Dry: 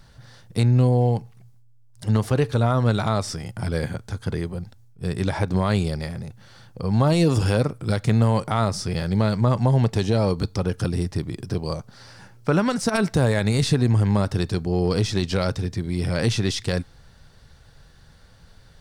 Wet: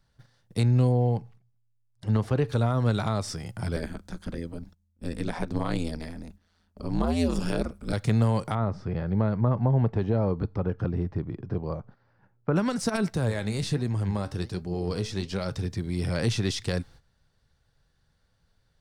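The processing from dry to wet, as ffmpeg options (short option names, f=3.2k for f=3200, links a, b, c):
-filter_complex "[0:a]asettb=1/sr,asplit=3[a][b][c];[a]atrim=end=0.924[d];[b]atrim=start=0.92:end=2.48,asetpts=PTS-STARTPTS,afade=t=in:d=0.004:c=qsin,afade=t=out:st=1.556:d=0.004:c=qsin,lowpass=f=2.8k:p=1[e];[c]atrim=start=2.476[f];[d][e]acrossfade=d=0.004:c1=hsin:c2=qsin[g];[g][f]acrossfade=d=0.004:c1=qsin:c2=hsin,asettb=1/sr,asplit=3[h][i][j];[h]atrim=end=3.764[k];[i]atrim=start=3.76:end=7.93,asetpts=PTS-STARTPTS,afade=t=in:d=0.004:c=qsin,afade=t=out:st=4.166:d=0.004:c=qsin,aeval=exprs='val(0)*sin(2*PI*84*n/s)':c=same[l];[j]atrim=start=7.926[m];[k][l]acrossfade=d=0.004:c1=hsin:c2=qsin[n];[n][m]acrossfade=d=0.004:c1=qsin:c2=hsin,asettb=1/sr,asplit=3[o][p][q];[o]atrim=end=8.554[r];[p]atrim=start=8.55:end=12.56,asetpts=PTS-STARTPTS,afade=t=in:d=0.004:c=qsin,afade=t=out:st=4.006:d=0.004:c=qsin,lowpass=1.5k[s];[q]atrim=start=12.556[t];[r][s]acrossfade=d=0.004:c1=hsin:c2=qsin[u];[u][t]acrossfade=d=0.004:c1=qsin:c2=hsin,asettb=1/sr,asplit=3[v][w][x];[v]atrim=end=13.104[y];[w]atrim=start=13.1:end=15.52,asetpts=PTS-STARTPTS,afade=t=in:d=0.004:c=qsin,afade=t=out:st=2.416:d=0.004:c=qsin,flanger=delay=4.8:depth=9.5:regen=71:speed=1.3:shape=sinusoidal[z];[x]atrim=start=15.516[aa];[y][z]acrossfade=d=0.004:c1=hsin:c2=qsin[ab];[ab][aa]acrossfade=d=0.004:c1=qsin:c2=hsin,agate=range=-14dB:threshold=-43dB:ratio=16:detection=peak,acrossover=split=410[ac][ad];[ad]acompressor=threshold=-23dB:ratio=6[ae];[ac][ae]amix=inputs=2:normalize=0,volume=-4dB"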